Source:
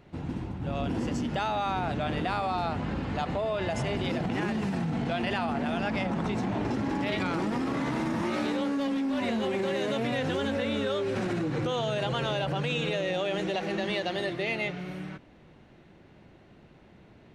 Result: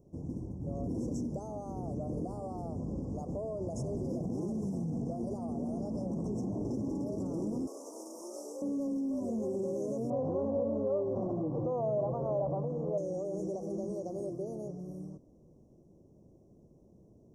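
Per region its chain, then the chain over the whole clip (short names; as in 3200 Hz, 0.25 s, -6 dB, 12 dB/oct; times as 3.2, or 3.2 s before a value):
7.67–8.62 HPF 390 Hz 24 dB/oct + tilt +2.5 dB/oct
10.1–12.98 synth low-pass 1900 Hz, resonance Q 6.9 + band shelf 810 Hz +8.5 dB 1.2 oct
whole clip: Chebyshev band-stop 1100–5500 Hz, order 4; band shelf 1800 Hz -15.5 dB 2.7 oct; gain -4 dB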